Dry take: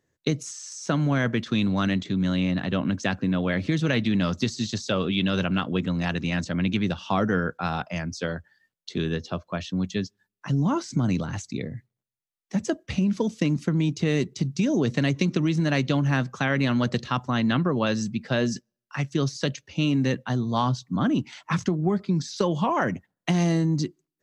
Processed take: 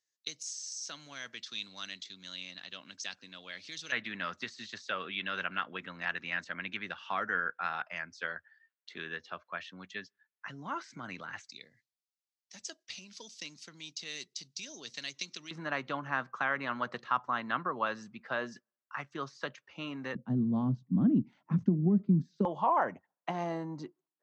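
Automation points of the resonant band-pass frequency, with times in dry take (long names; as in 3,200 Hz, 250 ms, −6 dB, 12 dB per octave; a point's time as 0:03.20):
resonant band-pass, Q 1.9
5,100 Hz
from 0:03.92 1,700 Hz
from 0:11.49 4,900 Hz
from 0:15.51 1,200 Hz
from 0:20.15 210 Hz
from 0:22.45 880 Hz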